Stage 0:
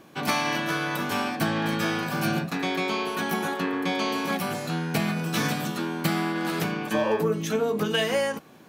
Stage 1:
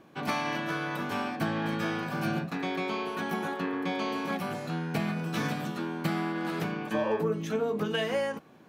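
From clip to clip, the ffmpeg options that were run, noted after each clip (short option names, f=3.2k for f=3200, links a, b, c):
-af "highshelf=f=4k:g=-10,volume=-4dB"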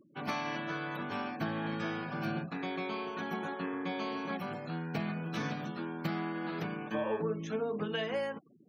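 -af "equalizer=f=8.7k:w=2.2:g=-3,afftfilt=real='re*gte(hypot(re,im),0.00562)':imag='im*gte(hypot(re,im),0.00562)':win_size=1024:overlap=0.75,volume=-5dB"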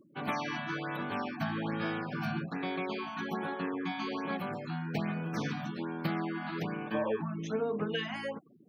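-af "afftfilt=real='re*(1-between(b*sr/1024,400*pow(7900/400,0.5+0.5*sin(2*PI*1.2*pts/sr))/1.41,400*pow(7900/400,0.5+0.5*sin(2*PI*1.2*pts/sr))*1.41))':imag='im*(1-between(b*sr/1024,400*pow(7900/400,0.5+0.5*sin(2*PI*1.2*pts/sr))/1.41,400*pow(7900/400,0.5+0.5*sin(2*PI*1.2*pts/sr))*1.41))':win_size=1024:overlap=0.75,volume=2dB"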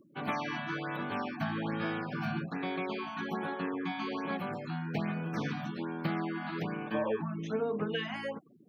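-filter_complex "[0:a]acrossover=split=4200[a][b];[b]acompressor=threshold=-58dB:ratio=4:attack=1:release=60[c];[a][c]amix=inputs=2:normalize=0"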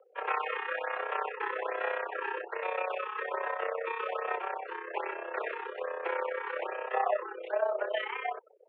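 -af "tremolo=f=32:d=0.71,highpass=f=290:t=q:w=0.5412,highpass=f=290:t=q:w=1.307,lowpass=f=2.6k:t=q:w=0.5176,lowpass=f=2.6k:t=q:w=0.7071,lowpass=f=2.6k:t=q:w=1.932,afreqshift=180,volume=6.5dB"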